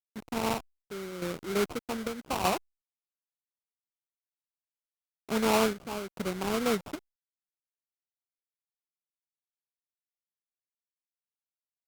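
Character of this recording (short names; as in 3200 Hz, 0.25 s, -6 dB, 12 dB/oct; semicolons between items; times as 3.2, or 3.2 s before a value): a quantiser's noise floor 8-bit, dither none; chopped level 0.82 Hz, depth 60%, duty 70%; aliases and images of a low sample rate 1800 Hz, jitter 20%; Opus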